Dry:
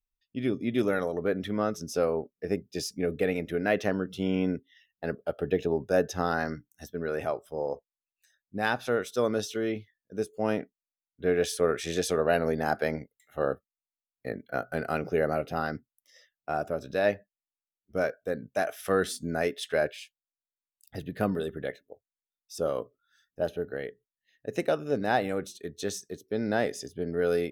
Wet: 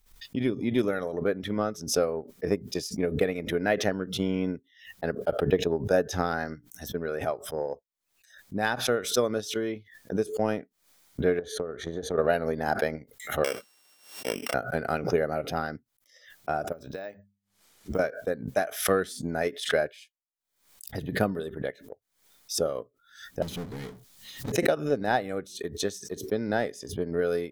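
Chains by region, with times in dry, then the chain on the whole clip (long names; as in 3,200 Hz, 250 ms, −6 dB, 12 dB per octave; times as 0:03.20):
0:11.39–0:12.18: moving average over 17 samples + downward compressor 12 to 1, threshold −28 dBFS
0:13.44–0:14.54: samples sorted by size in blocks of 16 samples + high-pass filter 320 Hz + level that may fall only so fast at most 66 dB per second
0:16.72–0:17.99: mains-hum notches 50/100/150/200 Hz + downward compressor 4 to 1, threshold −36 dBFS + bad sample-rate conversion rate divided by 2×, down none, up hold
0:23.42–0:24.52: Chebyshev band-stop filter 220–3,700 Hz + power curve on the samples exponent 0.35
whole clip: transient designer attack +6 dB, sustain −4 dB; notch filter 2,700 Hz, Q 13; background raised ahead of every attack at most 110 dB per second; level −2 dB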